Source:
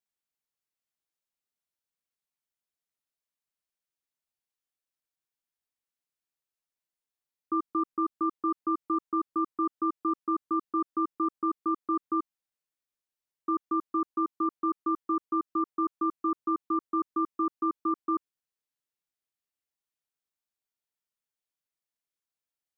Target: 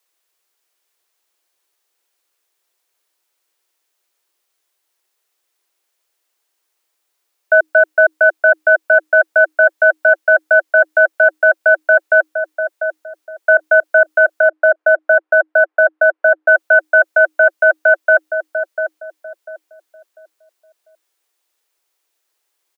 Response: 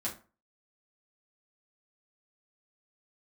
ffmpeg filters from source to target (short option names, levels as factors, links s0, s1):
-filter_complex "[0:a]asplit=3[s0][s1][s2];[s0]afade=t=out:st=14.41:d=0.02[s3];[s1]lowpass=1300,afade=t=in:st=14.41:d=0.02,afade=t=out:st=16.47:d=0.02[s4];[s2]afade=t=in:st=16.47:d=0.02[s5];[s3][s4][s5]amix=inputs=3:normalize=0,acontrast=72,afreqshift=310,asplit=2[s6][s7];[s7]adelay=695,lowpass=f=810:p=1,volume=0.501,asplit=2[s8][s9];[s9]adelay=695,lowpass=f=810:p=1,volume=0.35,asplit=2[s10][s11];[s11]adelay=695,lowpass=f=810:p=1,volume=0.35,asplit=2[s12][s13];[s13]adelay=695,lowpass=f=810:p=1,volume=0.35[s14];[s6][s8][s10][s12][s14]amix=inputs=5:normalize=0,alimiter=level_in=5.31:limit=0.891:release=50:level=0:latency=1,volume=0.891"